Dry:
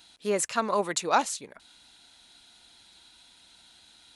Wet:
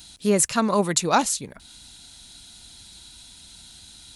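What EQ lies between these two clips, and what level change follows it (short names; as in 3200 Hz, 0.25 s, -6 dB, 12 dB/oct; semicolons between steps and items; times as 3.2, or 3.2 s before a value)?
tone controls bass +13 dB, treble +12 dB; dynamic EQ 7300 Hz, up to -6 dB, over -47 dBFS, Q 0.75; low shelf 150 Hz +4 dB; +3.0 dB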